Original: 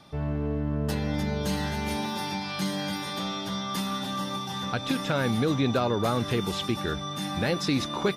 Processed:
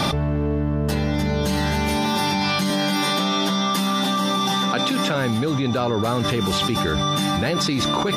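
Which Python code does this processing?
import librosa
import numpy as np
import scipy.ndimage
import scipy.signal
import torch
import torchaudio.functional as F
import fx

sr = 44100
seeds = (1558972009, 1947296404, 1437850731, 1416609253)

y = fx.steep_highpass(x, sr, hz=150.0, slope=48, at=(2.7, 5.15))
y = fx.env_flatten(y, sr, amount_pct=100)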